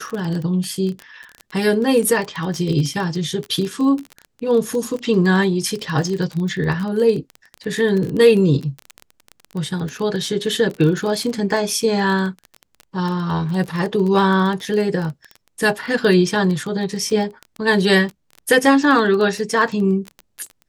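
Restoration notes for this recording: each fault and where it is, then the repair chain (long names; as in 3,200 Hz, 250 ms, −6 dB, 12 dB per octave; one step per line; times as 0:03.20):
surface crackle 20 per second −23 dBFS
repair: click removal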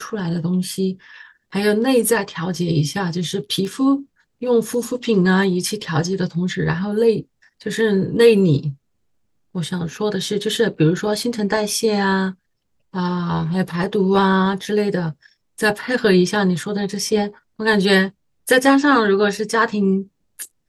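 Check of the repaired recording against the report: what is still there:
none of them is left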